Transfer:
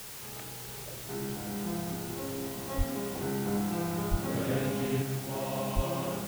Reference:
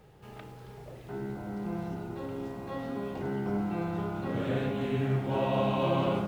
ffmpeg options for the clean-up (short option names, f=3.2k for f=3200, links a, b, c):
-filter_complex "[0:a]adeclick=t=4,asplit=3[a][b][c];[a]afade=t=out:st=2.77:d=0.02[d];[b]highpass=f=140:w=0.5412,highpass=f=140:w=1.3066,afade=t=in:st=2.77:d=0.02,afade=t=out:st=2.89:d=0.02[e];[c]afade=t=in:st=2.89:d=0.02[f];[d][e][f]amix=inputs=3:normalize=0,asplit=3[g][h][i];[g]afade=t=out:st=4.1:d=0.02[j];[h]highpass=f=140:w=0.5412,highpass=f=140:w=1.3066,afade=t=in:st=4.1:d=0.02,afade=t=out:st=4.22:d=0.02[k];[i]afade=t=in:st=4.22:d=0.02[l];[j][k][l]amix=inputs=3:normalize=0,asplit=3[m][n][o];[m]afade=t=out:st=5.75:d=0.02[p];[n]highpass=f=140:w=0.5412,highpass=f=140:w=1.3066,afade=t=in:st=5.75:d=0.02,afade=t=out:st=5.87:d=0.02[q];[o]afade=t=in:st=5.87:d=0.02[r];[p][q][r]amix=inputs=3:normalize=0,afwtdn=0.0063,asetnsamples=n=441:p=0,asendcmd='5.02 volume volume 6dB',volume=0dB"